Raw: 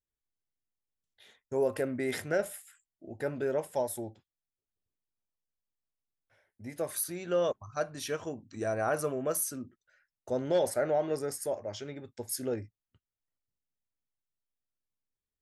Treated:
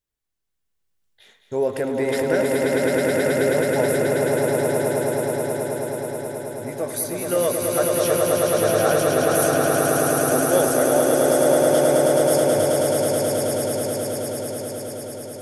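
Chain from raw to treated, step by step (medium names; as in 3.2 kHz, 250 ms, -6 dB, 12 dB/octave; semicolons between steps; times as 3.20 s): echo with a slow build-up 107 ms, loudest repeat 8, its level -3.5 dB; trim +6.5 dB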